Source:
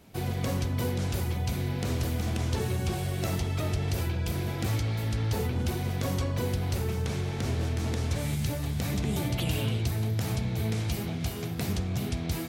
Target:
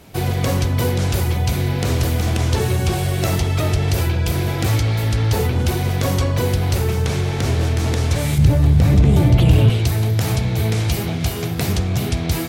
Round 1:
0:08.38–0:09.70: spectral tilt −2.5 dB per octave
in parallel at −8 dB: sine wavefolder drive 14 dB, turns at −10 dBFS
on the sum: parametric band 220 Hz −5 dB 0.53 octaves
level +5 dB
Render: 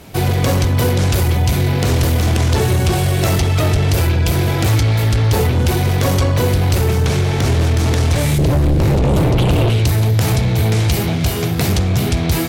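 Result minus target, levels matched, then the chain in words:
sine wavefolder: distortion +15 dB
0:08.38–0:09.70: spectral tilt −2.5 dB per octave
in parallel at −8 dB: sine wavefolder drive 5 dB, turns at −10 dBFS
on the sum: parametric band 220 Hz −5 dB 0.53 octaves
level +5 dB

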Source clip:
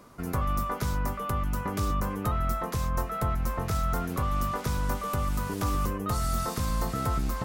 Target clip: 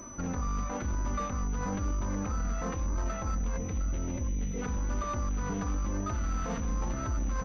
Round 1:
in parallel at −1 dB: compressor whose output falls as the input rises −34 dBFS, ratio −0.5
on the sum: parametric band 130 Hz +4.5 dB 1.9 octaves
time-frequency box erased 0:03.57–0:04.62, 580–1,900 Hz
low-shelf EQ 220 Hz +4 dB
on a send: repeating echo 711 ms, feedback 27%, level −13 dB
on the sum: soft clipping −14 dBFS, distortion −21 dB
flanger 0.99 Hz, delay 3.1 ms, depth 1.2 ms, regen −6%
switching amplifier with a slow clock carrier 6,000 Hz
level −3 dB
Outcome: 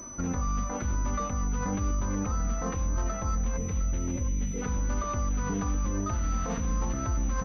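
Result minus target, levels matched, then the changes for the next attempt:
soft clipping: distortion −9 dB
change: soft clipping −21 dBFS, distortion −12 dB

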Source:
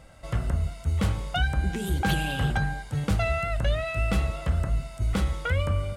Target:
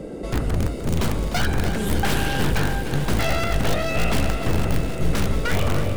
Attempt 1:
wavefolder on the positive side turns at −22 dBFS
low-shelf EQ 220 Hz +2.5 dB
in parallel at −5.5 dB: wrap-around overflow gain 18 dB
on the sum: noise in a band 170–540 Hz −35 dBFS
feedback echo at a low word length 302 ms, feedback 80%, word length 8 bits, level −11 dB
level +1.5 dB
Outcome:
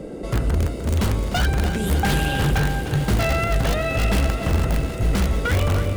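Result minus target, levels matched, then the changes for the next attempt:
wavefolder on the positive side: distortion −11 dB
change: wavefolder on the positive side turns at −28.5 dBFS

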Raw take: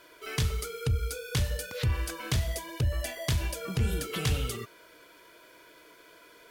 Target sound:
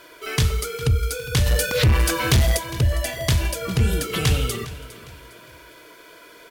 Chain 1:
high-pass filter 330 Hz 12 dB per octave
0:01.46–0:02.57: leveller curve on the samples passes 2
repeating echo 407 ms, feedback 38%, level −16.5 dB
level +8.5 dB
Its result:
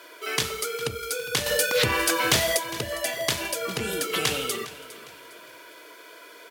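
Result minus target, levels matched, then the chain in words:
250 Hz band −3.0 dB
0:01.46–0:02.57: leveller curve on the samples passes 2
repeating echo 407 ms, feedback 38%, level −16.5 dB
level +8.5 dB

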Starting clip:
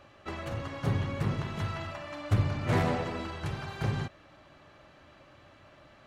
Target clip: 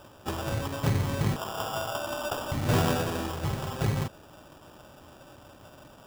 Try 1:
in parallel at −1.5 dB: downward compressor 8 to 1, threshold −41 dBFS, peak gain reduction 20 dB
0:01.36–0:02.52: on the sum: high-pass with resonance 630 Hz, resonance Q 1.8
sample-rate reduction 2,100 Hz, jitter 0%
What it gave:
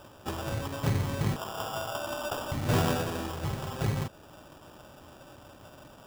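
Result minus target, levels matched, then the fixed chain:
downward compressor: peak gain reduction +8.5 dB
in parallel at −1.5 dB: downward compressor 8 to 1, threshold −31 dBFS, peak gain reduction 11.5 dB
0:01.36–0:02.52: on the sum: high-pass with resonance 630 Hz, resonance Q 1.8
sample-rate reduction 2,100 Hz, jitter 0%

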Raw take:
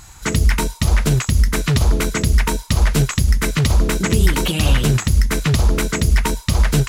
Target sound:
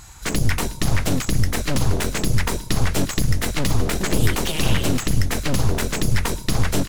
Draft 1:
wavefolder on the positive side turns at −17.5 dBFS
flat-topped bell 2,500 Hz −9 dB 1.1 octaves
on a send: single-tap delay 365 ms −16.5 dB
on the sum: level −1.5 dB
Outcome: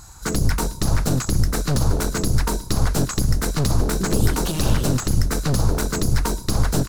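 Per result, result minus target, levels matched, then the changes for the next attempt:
wavefolder on the positive side: distortion −9 dB; 2,000 Hz band −5.0 dB
change: wavefolder on the positive side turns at −24.5 dBFS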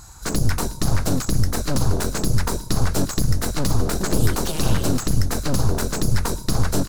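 2,000 Hz band −5.0 dB
remove: flat-topped bell 2,500 Hz −9 dB 1.1 octaves

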